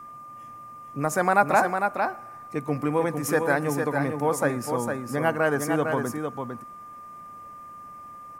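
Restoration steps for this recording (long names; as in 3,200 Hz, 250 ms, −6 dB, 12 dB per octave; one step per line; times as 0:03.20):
notch filter 1,200 Hz, Q 30
echo removal 454 ms −5.5 dB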